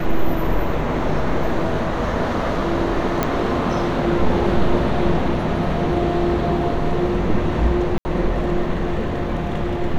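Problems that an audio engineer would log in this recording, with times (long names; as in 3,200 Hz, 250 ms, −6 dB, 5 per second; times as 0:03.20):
0:03.23: click −5 dBFS
0:07.98–0:08.05: drop-out 70 ms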